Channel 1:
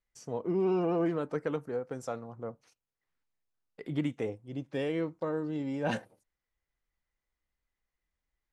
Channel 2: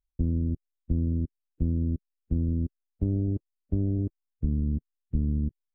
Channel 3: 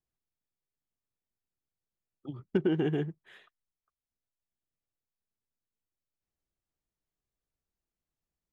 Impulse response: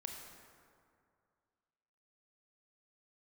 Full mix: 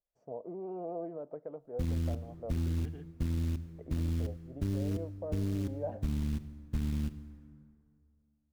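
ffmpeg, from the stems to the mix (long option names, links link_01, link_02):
-filter_complex "[0:a]alimiter=level_in=2.5dB:limit=-24dB:level=0:latency=1:release=329,volume=-2.5dB,crystalizer=i=6:c=0,lowpass=frequency=640:width_type=q:width=4.9,volume=-11.5dB,asplit=2[link_01][link_02];[link_02]volume=-23dB[link_03];[1:a]acrusher=bits=5:mode=log:mix=0:aa=0.000001,adelay=1600,volume=-3dB,asplit=2[link_04][link_05];[link_05]volume=-8.5dB[link_06];[2:a]volume=-19.5dB[link_07];[3:a]atrim=start_sample=2205[link_08];[link_03][link_06]amix=inputs=2:normalize=0[link_09];[link_09][link_08]afir=irnorm=-1:irlink=0[link_10];[link_01][link_04][link_07][link_10]amix=inputs=4:normalize=0,alimiter=level_in=0.5dB:limit=-24dB:level=0:latency=1:release=29,volume=-0.5dB"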